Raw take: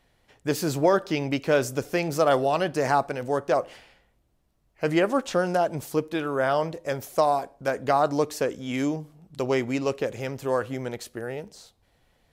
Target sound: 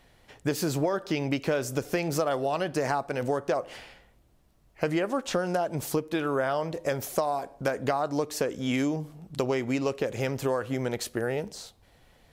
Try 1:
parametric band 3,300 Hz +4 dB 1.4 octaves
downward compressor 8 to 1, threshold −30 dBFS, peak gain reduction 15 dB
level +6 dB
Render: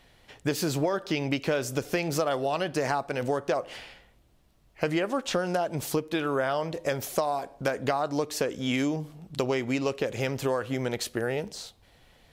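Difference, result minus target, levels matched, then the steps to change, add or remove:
4,000 Hz band +3.0 dB
remove: parametric band 3,300 Hz +4 dB 1.4 octaves

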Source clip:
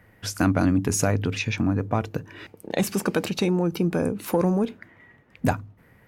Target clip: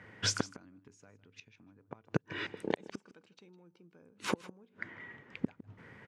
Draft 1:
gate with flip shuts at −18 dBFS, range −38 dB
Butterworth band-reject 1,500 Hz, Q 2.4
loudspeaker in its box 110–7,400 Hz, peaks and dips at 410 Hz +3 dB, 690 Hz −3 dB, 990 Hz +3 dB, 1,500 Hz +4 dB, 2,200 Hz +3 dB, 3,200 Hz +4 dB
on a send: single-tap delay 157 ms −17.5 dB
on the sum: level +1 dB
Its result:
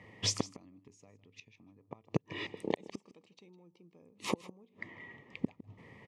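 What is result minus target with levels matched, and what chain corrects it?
2,000 Hz band −4.0 dB
gate with flip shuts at −18 dBFS, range −38 dB
loudspeaker in its box 110–7,400 Hz, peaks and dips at 410 Hz +3 dB, 690 Hz −3 dB, 990 Hz +3 dB, 1,500 Hz +4 dB, 2,200 Hz +3 dB, 3,200 Hz +4 dB
on a send: single-tap delay 157 ms −17.5 dB
on the sum: level +1 dB

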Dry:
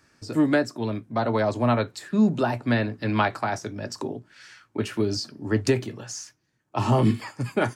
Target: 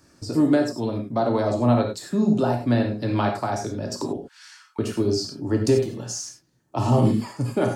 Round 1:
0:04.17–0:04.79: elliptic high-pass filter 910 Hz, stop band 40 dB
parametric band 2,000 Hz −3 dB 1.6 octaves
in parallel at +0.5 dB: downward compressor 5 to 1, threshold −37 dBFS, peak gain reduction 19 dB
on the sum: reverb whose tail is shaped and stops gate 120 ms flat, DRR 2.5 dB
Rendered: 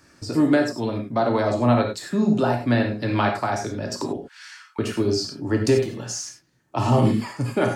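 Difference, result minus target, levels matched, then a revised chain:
2,000 Hz band +5.5 dB
0:04.17–0:04.79: elliptic high-pass filter 910 Hz, stop band 40 dB
parametric band 2,000 Hz −10.5 dB 1.6 octaves
in parallel at +0.5 dB: downward compressor 5 to 1, threshold −37 dBFS, peak gain reduction 19 dB
on the sum: reverb whose tail is shaped and stops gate 120 ms flat, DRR 2.5 dB

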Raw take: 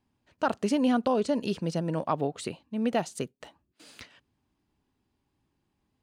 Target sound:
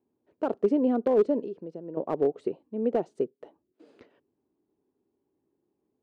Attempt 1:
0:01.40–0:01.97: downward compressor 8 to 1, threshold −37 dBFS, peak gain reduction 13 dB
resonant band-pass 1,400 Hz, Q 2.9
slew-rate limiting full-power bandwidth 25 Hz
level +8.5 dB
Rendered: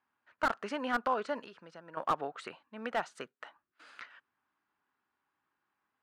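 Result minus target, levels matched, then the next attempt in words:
1,000 Hz band +11.5 dB
0:01.40–0:01.97: downward compressor 8 to 1, threshold −37 dBFS, peak gain reduction 13 dB
resonant band-pass 400 Hz, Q 2.9
slew-rate limiting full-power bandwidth 25 Hz
level +8.5 dB

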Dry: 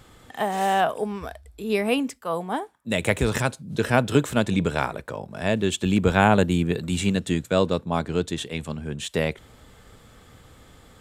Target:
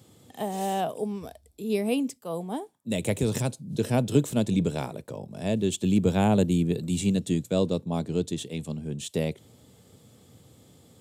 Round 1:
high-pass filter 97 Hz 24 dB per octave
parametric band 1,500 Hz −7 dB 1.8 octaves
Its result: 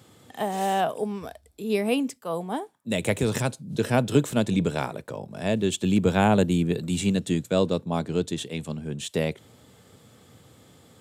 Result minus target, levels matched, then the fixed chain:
2,000 Hz band +5.5 dB
high-pass filter 97 Hz 24 dB per octave
parametric band 1,500 Hz −16.5 dB 1.8 octaves

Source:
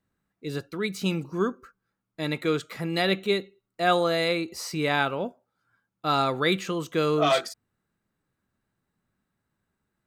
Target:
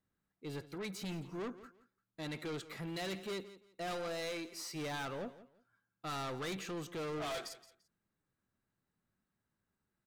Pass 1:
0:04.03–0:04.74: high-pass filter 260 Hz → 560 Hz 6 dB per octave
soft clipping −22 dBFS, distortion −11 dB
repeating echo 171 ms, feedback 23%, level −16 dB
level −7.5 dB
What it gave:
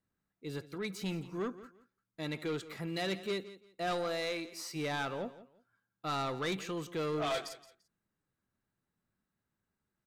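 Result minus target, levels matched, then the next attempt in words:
soft clipping: distortion −6 dB
0:04.03–0:04.74: high-pass filter 260 Hz → 560 Hz 6 dB per octave
soft clipping −30 dBFS, distortion −6 dB
repeating echo 171 ms, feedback 23%, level −16 dB
level −7.5 dB

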